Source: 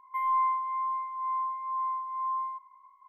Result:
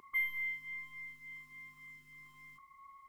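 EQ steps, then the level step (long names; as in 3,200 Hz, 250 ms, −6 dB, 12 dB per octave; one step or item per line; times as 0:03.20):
linear-phase brick-wall band-stop 400–1,100 Hz
parametric band 200 Hz +12.5 dB 2.6 octaves
+11.5 dB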